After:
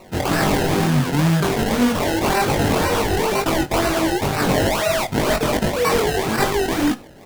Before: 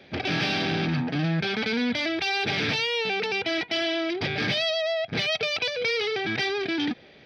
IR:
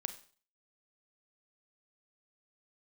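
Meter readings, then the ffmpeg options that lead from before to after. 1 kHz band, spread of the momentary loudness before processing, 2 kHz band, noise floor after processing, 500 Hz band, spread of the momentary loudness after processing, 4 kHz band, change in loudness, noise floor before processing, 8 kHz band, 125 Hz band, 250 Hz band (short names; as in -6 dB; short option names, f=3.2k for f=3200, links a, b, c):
+12.5 dB, 2 LU, +2.5 dB, -40 dBFS, +8.5 dB, 2 LU, 0.0 dB, +6.5 dB, -51 dBFS, n/a, +10.5 dB, +9.0 dB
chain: -filter_complex "[0:a]acrusher=samples=26:mix=1:aa=0.000001:lfo=1:lforange=26:lforate=2,flanger=delay=19:depth=3.8:speed=2.3,asplit=2[a][b];[1:a]atrim=start_sample=2205,asetrate=61740,aresample=44100[c];[b][c]afir=irnorm=-1:irlink=0,volume=1.5dB[d];[a][d]amix=inputs=2:normalize=0,volume=6dB"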